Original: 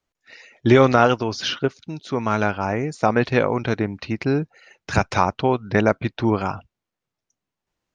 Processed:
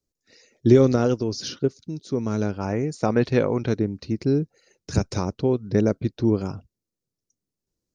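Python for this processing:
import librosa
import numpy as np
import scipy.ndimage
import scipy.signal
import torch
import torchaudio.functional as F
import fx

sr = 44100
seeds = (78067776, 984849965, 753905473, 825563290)

y = fx.band_shelf(x, sr, hz=1500.0, db=fx.steps((0.0, -15.0), (2.58, -8.0), (3.72, -15.0)), octaves=2.7)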